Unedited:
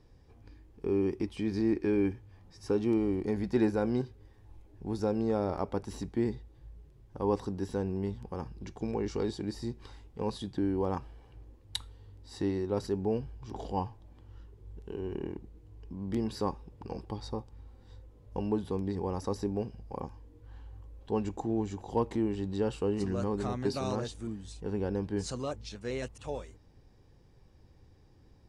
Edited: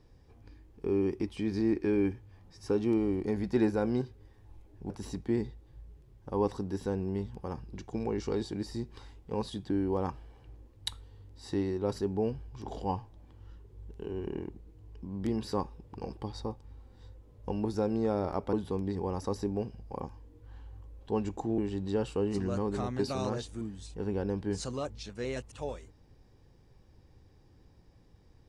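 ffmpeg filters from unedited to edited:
ffmpeg -i in.wav -filter_complex "[0:a]asplit=5[link_01][link_02][link_03][link_04][link_05];[link_01]atrim=end=4.902[link_06];[link_02]atrim=start=5.778:end=18.532[link_07];[link_03]atrim=start=4.898:end=5.782[link_08];[link_04]atrim=start=18.528:end=21.582[link_09];[link_05]atrim=start=22.238[link_10];[link_06][link_07]acrossfade=duration=0.004:curve1=hsin:curve2=hsin[link_11];[link_11][link_08]acrossfade=duration=0.004:curve1=hsin:curve2=hsin[link_12];[link_12][link_09]acrossfade=duration=0.004:curve1=hsin:curve2=hsin[link_13];[link_13][link_10]acrossfade=duration=0.004:curve1=hsin:curve2=hsin" out.wav

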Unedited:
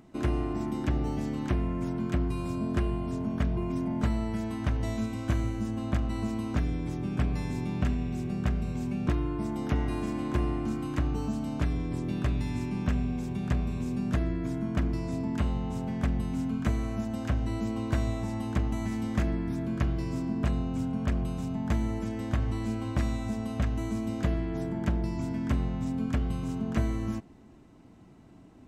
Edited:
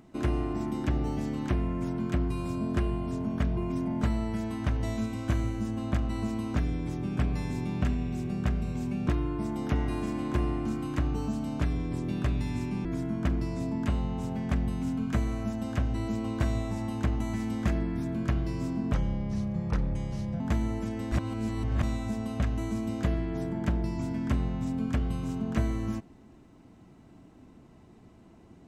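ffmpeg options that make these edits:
ffmpeg -i in.wav -filter_complex "[0:a]asplit=6[link_01][link_02][link_03][link_04][link_05][link_06];[link_01]atrim=end=12.852[link_07];[link_02]atrim=start=14.368:end=20.464[link_08];[link_03]atrim=start=20.46:end=21.6,asetpts=PTS-STARTPTS,asetrate=34398,aresample=44100[link_09];[link_04]atrim=start=21.596:end=22.322[link_10];[link_05]atrim=start=22.318:end=23.032,asetpts=PTS-STARTPTS,areverse[link_11];[link_06]atrim=start=23.028[link_12];[link_07][link_08]acrossfade=duration=0.004:curve1=hsin:curve2=hsin[link_13];[link_13][link_09]acrossfade=duration=0.004:curve1=hsin:curve2=hsin[link_14];[link_14][link_10]acrossfade=duration=0.004:curve1=hsin:curve2=hsin[link_15];[link_15][link_11]acrossfade=duration=0.004:curve1=hsin:curve2=hsin[link_16];[link_16][link_12]acrossfade=duration=0.004:curve1=hsin:curve2=hsin" out.wav

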